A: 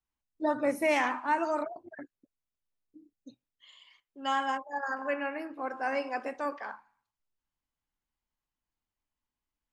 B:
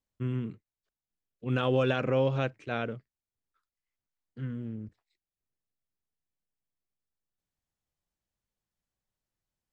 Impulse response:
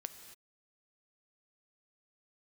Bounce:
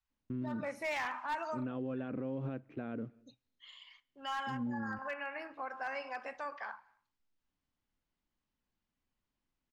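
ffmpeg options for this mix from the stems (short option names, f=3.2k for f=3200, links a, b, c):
-filter_complex "[0:a]lowpass=5.4k,equalizer=f=310:t=o:w=1.6:g=-14,asoftclip=type=hard:threshold=-25.5dB,volume=1.5dB,asplit=2[a][b];[b]volume=-18.5dB[c];[1:a]acrusher=bits=6:mode=log:mix=0:aa=0.000001,lowpass=1.9k,equalizer=f=260:w=1.5:g=12.5,adelay=100,volume=-3dB,asplit=2[d][e];[e]volume=-22.5dB[f];[2:a]atrim=start_sample=2205[g];[c][f]amix=inputs=2:normalize=0[h];[h][g]afir=irnorm=-1:irlink=0[i];[a][d][i]amix=inputs=3:normalize=0,alimiter=level_in=6.5dB:limit=-24dB:level=0:latency=1:release=203,volume=-6.5dB"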